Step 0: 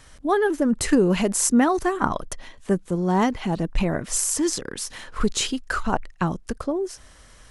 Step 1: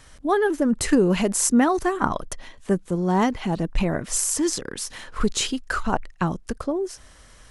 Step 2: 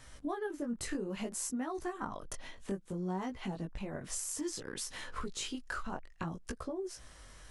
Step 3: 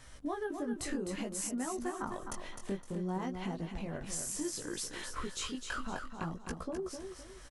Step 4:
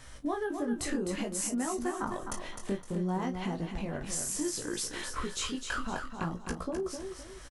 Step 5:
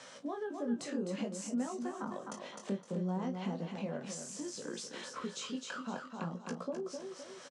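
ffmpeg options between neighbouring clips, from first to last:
-af anull
-af "acompressor=threshold=-31dB:ratio=6,flanger=delay=15.5:depth=6.2:speed=0.6,volume=-2dB"
-af "aecho=1:1:257|514|771|1028:0.447|0.152|0.0516|0.0176"
-filter_complex "[0:a]asplit=2[a][b];[b]adelay=34,volume=-12.5dB[c];[a][c]amix=inputs=2:normalize=0,volume=4dB"
-filter_complex "[0:a]acrossover=split=270[a][b];[b]acompressor=threshold=-52dB:ratio=2[c];[a][c]amix=inputs=2:normalize=0,highpass=f=200:w=0.5412,highpass=f=200:w=1.3066,equalizer=f=320:t=q:w=4:g=-10,equalizer=f=530:t=q:w=4:g=7,equalizer=f=1.9k:t=q:w=4:g=-4,lowpass=f=7.5k:w=0.5412,lowpass=f=7.5k:w=1.3066,volume=3.5dB"

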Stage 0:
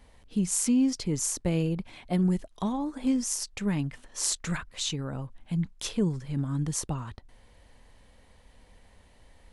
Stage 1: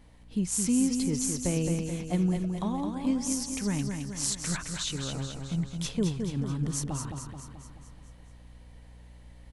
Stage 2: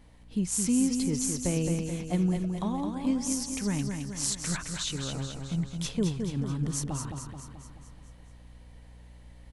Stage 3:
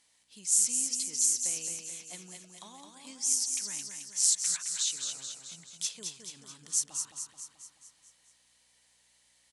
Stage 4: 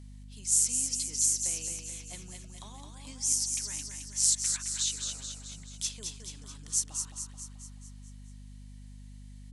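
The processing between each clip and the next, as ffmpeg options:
-af "aeval=exprs='val(0)+0.00224*(sin(2*PI*60*n/s)+sin(2*PI*2*60*n/s)/2+sin(2*PI*3*60*n/s)/3+sin(2*PI*4*60*n/s)/4+sin(2*PI*5*60*n/s)/5)':c=same,aecho=1:1:216|432|648|864|1080|1296|1512:0.531|0.292|0.161|0.0883|0.0486|0.0267|0.0147,volume=-2dB"
-af anull
-af "bandpass=f=7.4k:t=q:w=1.3:csg=0,acontrast=87"
-af "aeval=exprs='val(0)+0.00501*(sin(2*PI*50*n/s)+sin(2*PI*2*50*n/s)/2+sin(2*PI*3*50*n/s)/3+sin(2*PI*4*50*n/s)/4+sin(2*PI*5*50*n/s)/5)':c=same"

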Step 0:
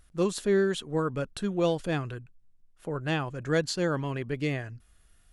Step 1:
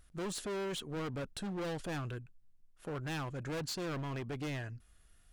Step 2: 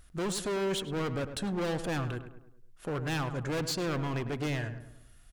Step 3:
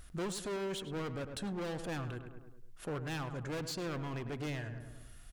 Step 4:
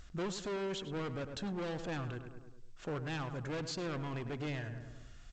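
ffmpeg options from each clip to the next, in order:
-af "volume=33dB,asoftclip=hard,volume=-33dB,volume=-3dB"
-filter_complex "[0:a]asplit=2[a][b];[b]adelay=103,lowpass=f=1.9k:p=1,volume=-10dB,asplit=2[c][d];[d]adelay=103,lowpass=f=1.9k:p=1,volume=0.49,asplit=2[e][f];[f]adelay=103,lowpass=f=1.9k:p=1,volume=0.49,asplit=2[g][h];[h]adelay=103,lowpass=f=1.9k:p=1,volume=0.49,asplit=2[i][j];[j]adelay=103,lowpass=f=1.9k:p=1,volume=0.49[k];[a][c][e][g][i][k]amix=inputs=6:normalize=0,volume=6dB"
-af "alimiter=level_in=13.5dB:limit=-24dB:level=0:latency=1:release=343,volume=-13.5dB,volume=3.5dB"
-ar 16000 -c:a g722

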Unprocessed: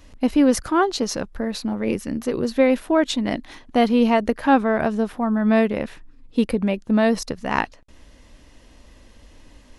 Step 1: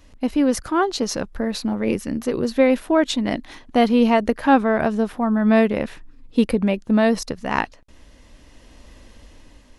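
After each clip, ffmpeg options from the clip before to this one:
-af "dynaudnorm=f=270:g=7:m=7.5dB,volume=-2.5dB"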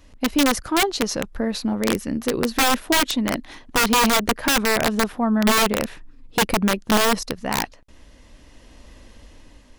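-af "aeval=exprs='(mod(3.76*val(0)+1,2)-1)/3.76':c=same"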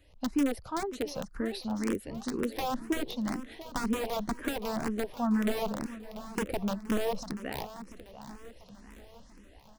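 -filter_complex "[0:a]acrossover=split=880[a][b];[b]acompressor=threshold=-28dB:ratio=6[c];[a][c]amix=inputs=2:normalize=0,aecho=1:1:690|1380|2070|2760|3450:0.211|0.108|0.055|0.028|0.0143,asplit=2[d][e];[e]afreqshift=2[f];[d][f]amix=inputs=2:normalize=1,volume=-7dB"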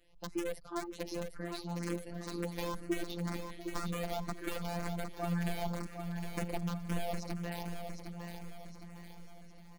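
-af "afftfilt=real='hypot(re,im)*cos(PI*b)':imag='0':win_size=1024:overlap=0.75,aecho=1:1:760|1520|2280|3040|3800:0.447|0.205|0.0945|0.0435|0.02,volume=-2dB"

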